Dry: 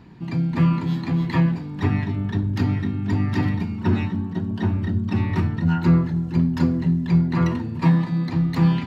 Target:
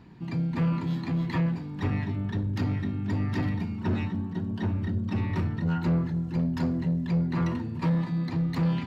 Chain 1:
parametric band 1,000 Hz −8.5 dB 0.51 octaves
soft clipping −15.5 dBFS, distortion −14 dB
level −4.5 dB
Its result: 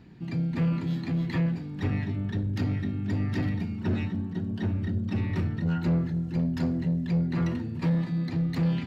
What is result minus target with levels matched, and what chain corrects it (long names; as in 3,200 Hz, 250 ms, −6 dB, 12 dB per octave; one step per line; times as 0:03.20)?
1,000 Hz band −4.5 dB
soft clipping −15.5 dBFS, distortion −14 dB
level −4.5 dB